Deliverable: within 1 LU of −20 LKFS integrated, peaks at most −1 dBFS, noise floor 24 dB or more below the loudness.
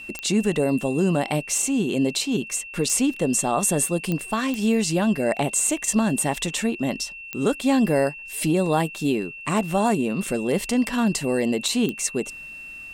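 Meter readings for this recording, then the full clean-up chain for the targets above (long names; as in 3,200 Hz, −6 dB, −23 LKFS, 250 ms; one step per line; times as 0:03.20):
number of clicks 6; interfering tone 2,700 Hz; level of the tone −36 dBFS; integrated loudness −23.0 LKFS; sample peak −8.5 dBFS; target loudness −20.0 LKFS
→ click removal
notch filter 2,700 Hz, Q 30
level +3 dB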